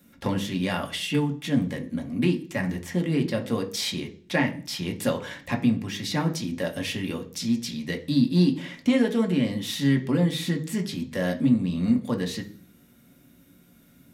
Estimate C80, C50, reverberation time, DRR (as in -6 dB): 19.0 dB, 14.5 dB, 0.45 s, 2.5 dB